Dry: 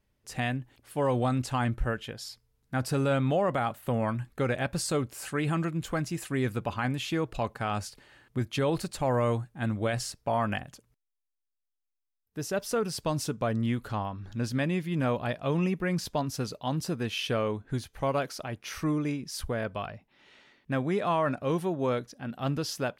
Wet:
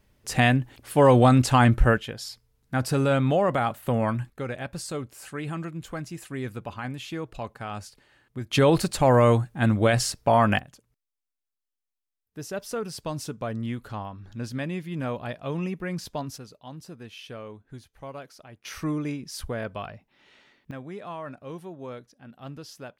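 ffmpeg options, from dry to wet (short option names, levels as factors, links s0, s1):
-af "asetnsamples=n=441:p=0,asendcmd='1.98 volume volume 4dB;4.3 volume volume -4dB;8.51 volume volume 8.5dB;10.59 volume volume -2.5dB;16.38 volume volume -11dB;18.65 volume volume 0dB;20.71 volume volume -10dB',volume=3.35"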